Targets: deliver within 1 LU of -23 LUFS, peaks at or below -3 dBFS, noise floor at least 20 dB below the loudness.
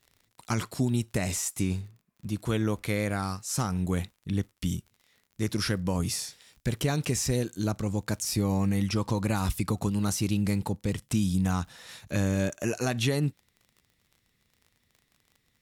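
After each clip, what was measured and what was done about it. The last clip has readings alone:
tick rate 40 per s; loudness -29.5 LUFS; peak level -14.0 dBFS; loudness target -23.0 LUFS
-> de-click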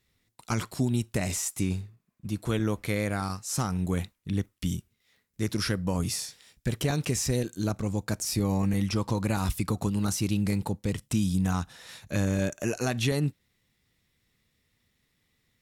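tick rate 0.77 per s; loudness -29.5 LUFS; peak level -14.0 dBFS; loudness target -23.0 LUFS
-> trim +6.5 dB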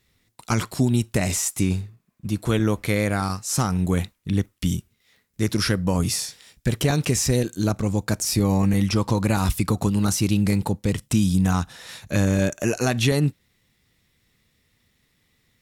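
loudness -23.0 LUFS; peak level -7.5 dBFS; noise floor -68 dBFS

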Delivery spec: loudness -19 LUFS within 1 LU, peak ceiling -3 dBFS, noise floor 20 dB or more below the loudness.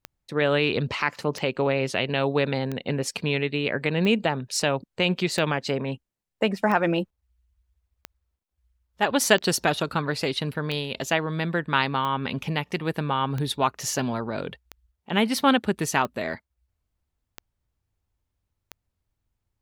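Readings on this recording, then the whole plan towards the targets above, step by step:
clicks found 15; loudness -25.5 LUFS; peak level -5.0 dBFS; loudness target -19.0 LUFS
-> de-click; trim +6.5 dB; peak limiter -3 dBFS

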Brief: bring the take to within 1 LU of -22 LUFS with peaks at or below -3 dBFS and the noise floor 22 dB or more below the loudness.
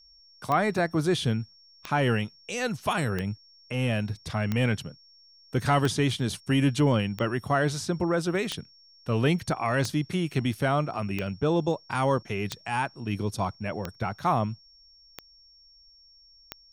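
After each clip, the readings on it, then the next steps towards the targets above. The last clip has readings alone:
clicks found 13; steady tone 5.5 kHz; tone level -54 dBFS; loudness -27.5 LUFS; peak level -11.0 dBFS; loudness target -22.0 LUFS
-> de-click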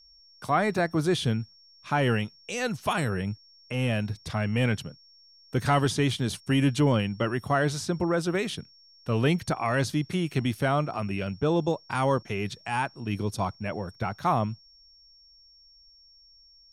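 clicks found 0; steady tone 5.5 kHz; tone level -54 dBFS
-> band-stop 5.5 kHz, Q 30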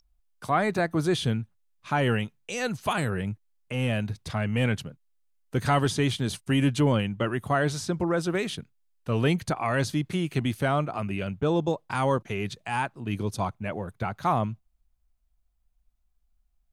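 steady tone not found; loudness -27.5 LUFS; peak level -11.0 dBFS; loudness target -22.0 LUFS
-> trim +5.5 dB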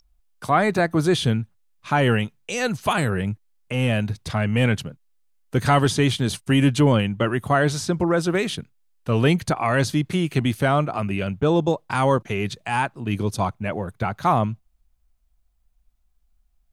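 loudness -22.0 LUFS; peak level -5.5 dBFS; noise floor -65 dBFS

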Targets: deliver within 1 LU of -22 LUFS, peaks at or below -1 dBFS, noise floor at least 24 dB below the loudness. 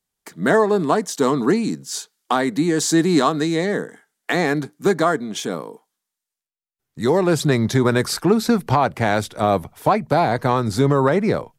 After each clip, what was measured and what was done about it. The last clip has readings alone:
loudness -19.5 LUFS; peak level -5.5 dBFS; loudness target -22.0 LUFS
-> trim -2.5 dB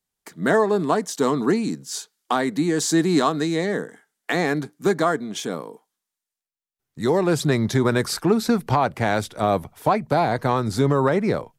loudness -22.0 LUFS; peak level -8.0 dBFS; noise floor -87 dBFS

